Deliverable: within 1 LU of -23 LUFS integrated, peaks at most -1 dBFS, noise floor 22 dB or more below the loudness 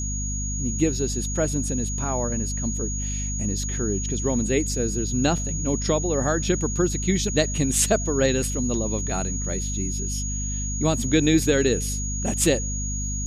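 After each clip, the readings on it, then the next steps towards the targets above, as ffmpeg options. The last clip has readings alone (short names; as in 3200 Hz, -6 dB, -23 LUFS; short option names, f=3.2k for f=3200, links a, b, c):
hum 50 Hz; harmonics up to 250 Hz; hum level -26 dBFS; steady tone 6700 Hz; tone level -30 dBFS; loudness -24.0 LUFS; peak -6.0 dBFS; loudness target -23.0 LUFS
-> -af "bandreject=f=50:t=h:w=4,bandreject=f=100:t=h:w=4,bandreject=f=150:t=h:w=4,bandreject=f=200:t=h:w=4,bandreject=f=250:t=h:w=4"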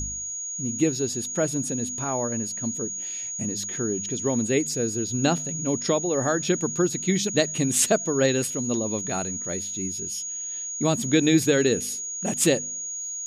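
hum none; steady tone 6700 Hz; tone level -30 dBFS
-> -af "bandreject=f=6.7k:w=30"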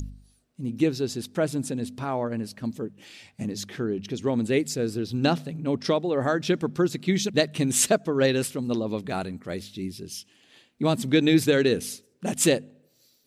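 steady tone none; loudness -26.0 LUFS; peak -6.5 dBFS; loudness target -23.0 LUFS
-> -af "volume=3dB"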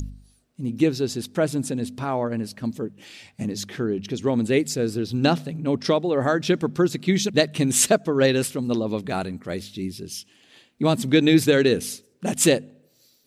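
loudness -23.0 LUFS; peak -3.5 dBFS; noise floor -63 dBFS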